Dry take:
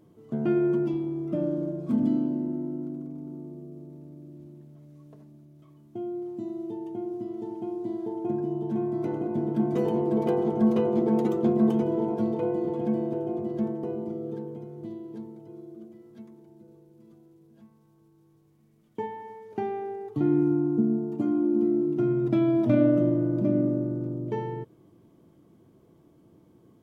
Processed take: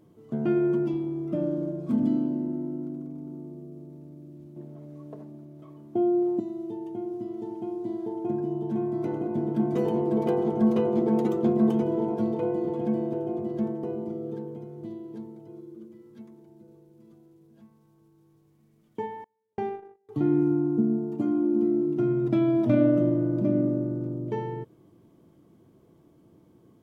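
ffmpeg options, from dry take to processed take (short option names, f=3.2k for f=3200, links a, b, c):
-filter_complex "[0:a]asettb=1/sr,asplit=3[a][b][c];[a]atrim=end=4.564[d];[b]atrim=start=4.56:end=6.4,asetpts=PTS-STARTPTS,afade=t=in:d=0.004:c=qsin,afade=t=out:st=1.836:d=0.004:c=qsin,equalizer=f=550:w=0.38:g=12[e];[c]atrim=start=6.396[f];[d][e]acrossfade=d=0.004:c1=hsin:c2=qsin[g];[g][f]acrossfade=d=0.004:c1=qsin:c2=hsin,asettb=1/sr,asplit=3[h][i][j];[h]atrim=end=15.594[k];[i]atrim=start=15.59:end=16.21,asetpts=PTS-STARTPTS,afade=t=in:d=0.004:c=qsin,afade=t=out:st=0.616:d=0.004:c=qsin,asuperstop=centerf=700:order=8:qfactor=5.6[l];[j]atrim=start=16.206[m];[k][l]acrossfade=d=0.004:c1=hsin:c2=qsin[n];[n][m]acrossfade=d=0.004:c1=qsin:c2=hsin,asettb=1/sr,asplit=3[o][p][q];[o]atrim=end=19.244[r];[p]atrim=start=19.24:end=20.09,asetpts=PTS-STARTPTS,afade=t=in:d=0.004:c=qsin,afade=t=out:st=0.846:d=0.004:c=qsin,agate=range=-34dB:threshold=-32dB:ratio=16:release=100:detection=peak[s];[q]atrim=start=20.086[t];[r][s]acrossfade=d=0.004:c1=hsin:c2=qsin[u];[u][t]acrossfade=d=0.004:c1=qsin:c2=hsin"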